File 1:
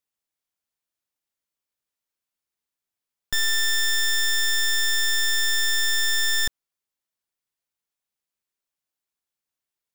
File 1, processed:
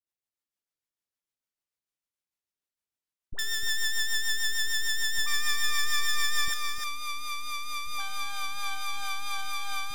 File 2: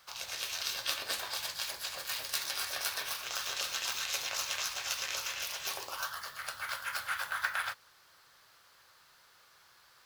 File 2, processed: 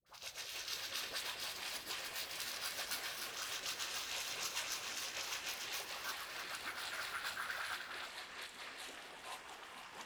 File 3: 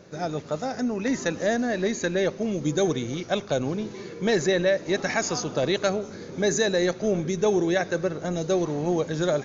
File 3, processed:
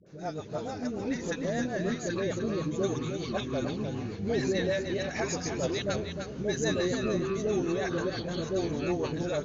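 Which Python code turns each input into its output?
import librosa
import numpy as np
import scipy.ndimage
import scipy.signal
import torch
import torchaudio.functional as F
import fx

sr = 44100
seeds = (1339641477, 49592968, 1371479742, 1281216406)

p1 = fx.dispersion(x, sr, late='highs', ms=64.0, hz=710.0)
p2 = fx.rotary(p1, sr, hz=6.7)
p3 = p2 + fx.echo_single(p2, sr, ms=304, db=-7.0, dry=0)
p4 = fx.echo_pitch(p3, sr, ms=197, semitones=-7, count=3, db_per_echo=-6.0)
y = F.gain(torch.from_numpy(p4), -5.5).numpy()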